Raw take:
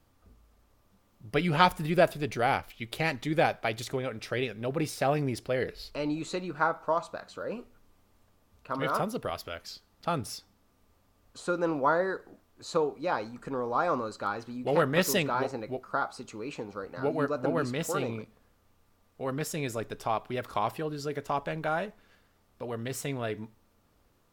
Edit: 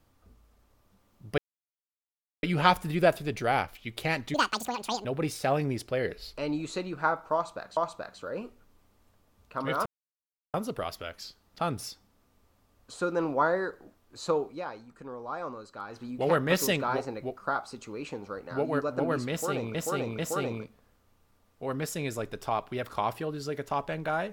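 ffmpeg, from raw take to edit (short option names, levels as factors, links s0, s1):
-filter_complex "[0:a]asplit=10[s0][s1][s2][s3][s4][s5][s6][s7][s8][s9];[s0]atrim=end=1.38,asetpts=PTS-STARTPTS,afade=t=out:st=1.376:d=0.004:c=hsin,apad=pad_dur=1.05[s10];[s1]atrim=start=1.38:end=3.294,asetpts=PTS-STARTPTS,afade=t=in:d=0.004:c=hsin[s11];[s2]atrim=start=3.29:end=4.62,asetpts=PTS-STARTPTS,asetrate=82908,aresample=44100,atrim=end_sample=31198,asetpts=PTS-STARTPTS[s12];[s3]atrim=start=4.616:end=7.342[s13];[s4]atrim=start=6.908:end=9,asetpts=PTS-STARTPTS,afade=t=out:st=2.088:d=0.004:c=hsin,apad=pad_dur=0.68[s14];[s5]atrim=start=9:end=13.11,asetpts=PTS-STARTPTS,afade=t=in:d=0.004:c=hsin,afade=t=out:st=3.94:d=0.17:silence=0.375837[s15];[s6]atrim=start=13.11:end=14.33,asetpts=PTS-STARTPTS,volume=0.376[s16];[s7]atrim=start=14.33:end=18.212,asetpts=PTS-STARTPTS,afade=t=in:d=0.17:silence=0.375837[s17];[s8]atrim=start=17.768:end=18.212[s18];[s9]atrim=start=17.768[s19];[s10][s11]concat=n=2:v=0:a=1[s20];[s20][s12]acrossfade=d=0.004:c1=hsin:c2=hsin[s21];[s21][s13]acrossfade=d=0.004:c1=hsin:c2=hsin[s22];[s14][s15][s16][s17]concat=n=4:v=0:a=1[s23];[s22][s23]acrossfade=d=0.004:c1=hsin:c2=hsin[s24];[s24][s18]acrossfade=d=0.004:c1=hsin:c2=hsin[s25];[s25][s19]acrossfade=d=0.004:c1=hsin:c2=hsin"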